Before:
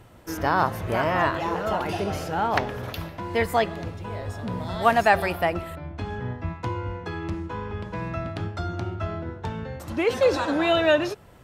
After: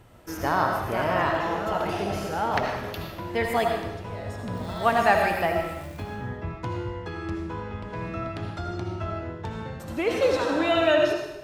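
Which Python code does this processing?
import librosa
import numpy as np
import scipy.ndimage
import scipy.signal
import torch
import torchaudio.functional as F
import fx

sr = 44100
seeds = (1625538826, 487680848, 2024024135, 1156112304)

y = fx.dmg_crackle(x, sr, seeds[0], per_s=590.0, level_db=-39.0, at=(4.54, 6.02), fade=0.02)
y = fx.rev_freeverb(y, sr, rt60_s=0.91, hf_ratio=1.0, predelay_ms=40, drr_db=2.0)
y = F.gain(torch.from_numpy(y), -3.0).numpy()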